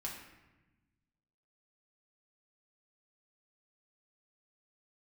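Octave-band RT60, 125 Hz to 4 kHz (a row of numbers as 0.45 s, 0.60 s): 2.0 s, 1.7 s, 1.1 s, 1.0 s, 1.1 s, 0.75 s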